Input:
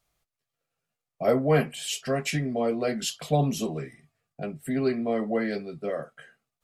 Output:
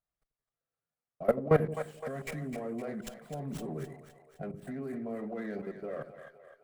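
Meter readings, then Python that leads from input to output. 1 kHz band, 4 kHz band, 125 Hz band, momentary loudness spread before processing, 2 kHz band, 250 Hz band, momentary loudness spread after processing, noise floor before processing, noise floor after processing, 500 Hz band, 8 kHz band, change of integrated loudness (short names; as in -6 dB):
-8.0 dB, -20.5 dB, -7.5 dB, 12 LU, -9.5 dB, -8.5 dB, 17 LU, under -85 dBFS, under -85 dBFS, -6.5 dB, -18.0 dB, -7.5 dB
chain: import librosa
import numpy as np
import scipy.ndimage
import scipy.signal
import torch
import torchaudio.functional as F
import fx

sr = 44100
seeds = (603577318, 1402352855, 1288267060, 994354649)

p1 = fx.band_shelf(x, sr, hz=4200.0, db=-15.5, octaves=1.7)
p2 = fx.level_steps(p1, sr, step_db=19)
p3 = fx.wow_flutter(p2, sr, seeds[0], rate_hz=2.1, depth_cents=29.0)
p4 = p3 + fx.echo_split(p3, sr, split_hz=490.0, low_ms=86, high_ms=257, feedback_pct=52, wet_db=-9, dry=0)
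y = fx.running_max(p4, sr, window=3)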